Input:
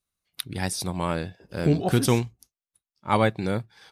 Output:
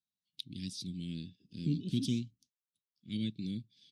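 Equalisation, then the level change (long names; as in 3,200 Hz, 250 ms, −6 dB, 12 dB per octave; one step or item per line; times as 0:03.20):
band-pass filter 160–4,700 Hz
elliptic band-stop filter 260–3,300 Hz, stop band 80 dB
−6.0 dB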